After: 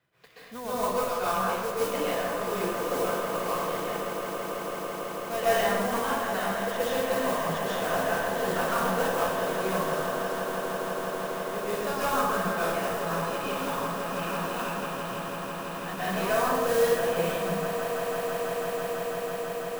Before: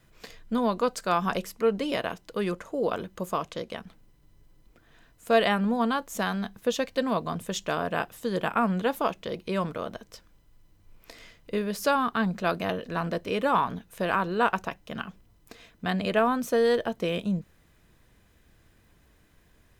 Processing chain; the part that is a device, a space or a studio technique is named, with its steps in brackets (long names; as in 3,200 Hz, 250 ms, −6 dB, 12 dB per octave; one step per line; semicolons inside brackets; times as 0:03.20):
gain on a spectral selection 0:13.01–0:15.26, 340–2,300 Hz −11 dB
carbon microphone (band-pass filter 310–3,600 Hz; soft clipping −16.5 dBFS, distortion −17 dB; noise that follows the level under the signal 12 dB)
low shelf with overshoot 170 Hz +8 dB, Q 1.5
echo that builds up and dies away 165 ms, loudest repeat 8, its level −13 dB
dense smooth reverb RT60 1.5 s, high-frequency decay 0.6×, pre-delay 115 ms, DRR −10 dB
level −9 dB